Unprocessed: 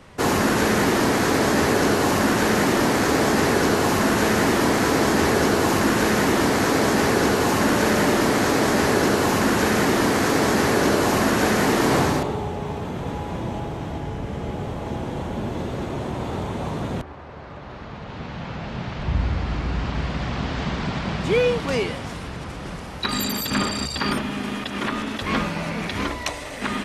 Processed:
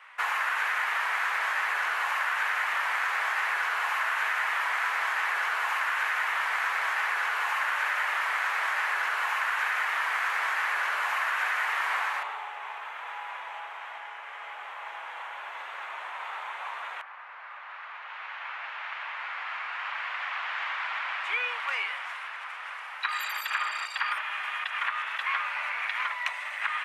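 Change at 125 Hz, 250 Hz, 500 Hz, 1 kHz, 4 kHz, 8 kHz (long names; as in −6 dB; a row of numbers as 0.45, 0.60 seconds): below −40 dB, below −40 dB, −25.5 dB, −5.5 dB, −9.5 dB, −18.0 dB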